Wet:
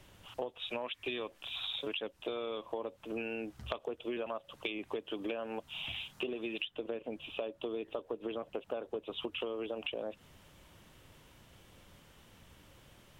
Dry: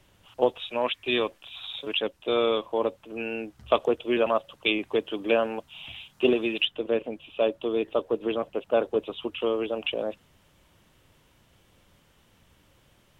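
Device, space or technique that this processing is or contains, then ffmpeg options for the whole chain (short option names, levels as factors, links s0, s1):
serial compression, peaks first: -af "acompressor=threshold=0.0251:ratio=4,acompressor=threshold=0.0126:ratio=3,volume=1.26"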